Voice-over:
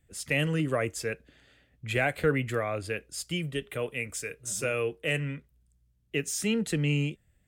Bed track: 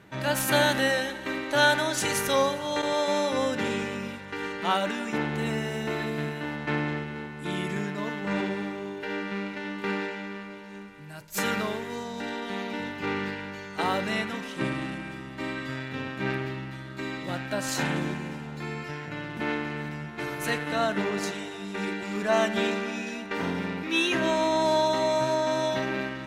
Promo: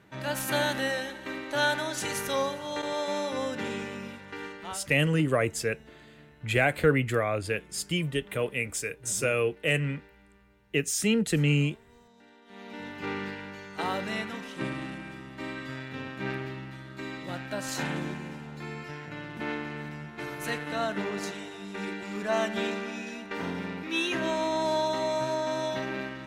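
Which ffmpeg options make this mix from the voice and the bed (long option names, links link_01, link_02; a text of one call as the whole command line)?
ffmpeg -i stem1.wav -i stem2.wav -filter_complex "[0:a]adelay=4600,volume=3dB[link_01];[1:a]volume=14dB,afade=type=out:start_time=4.38:duration=0.46:silence=0.125893,afade=type=in:start_time=12.45:duration=0.54:silence=0.112202[link_02];[link_01][link_02]amix=inputs=2:normalize=0" out.wav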